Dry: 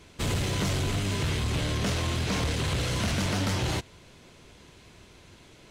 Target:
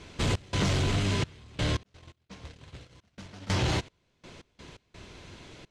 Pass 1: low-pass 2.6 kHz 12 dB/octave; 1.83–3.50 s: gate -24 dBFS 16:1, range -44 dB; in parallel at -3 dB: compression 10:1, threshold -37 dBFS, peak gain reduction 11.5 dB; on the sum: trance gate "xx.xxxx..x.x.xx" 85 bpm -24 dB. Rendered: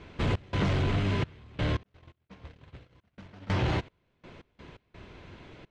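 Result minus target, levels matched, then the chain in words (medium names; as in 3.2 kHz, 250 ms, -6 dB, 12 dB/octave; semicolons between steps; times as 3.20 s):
8 kHz band -14.0 dB
low-pass 6.9 kHz 12 dB/octave; 1.83–3.50 s: gate -24 dBFS 16:1, range -44 dB; in parallel at -3 dB: compression 10:1, threshold -37 dBFS, peak gain reduction 12 dB; on the sum: trance gate "xx.xxxx..x.x.xx" 85 bpm -24 dB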